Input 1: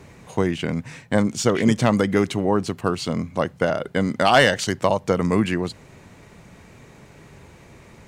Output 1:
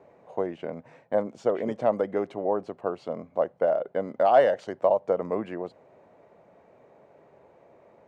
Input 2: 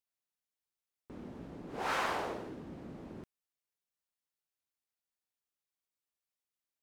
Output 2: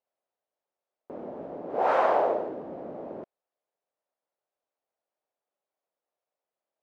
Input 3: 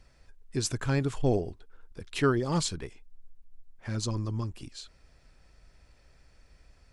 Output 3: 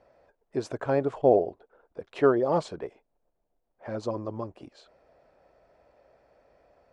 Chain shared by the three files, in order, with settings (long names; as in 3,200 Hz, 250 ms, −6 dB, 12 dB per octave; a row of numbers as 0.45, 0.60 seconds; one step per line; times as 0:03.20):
resonant band-pass 610 Hz, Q 2.6
loudness normalisation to −27 LKFS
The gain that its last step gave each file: +1.0, +18.0, +13.5 decibels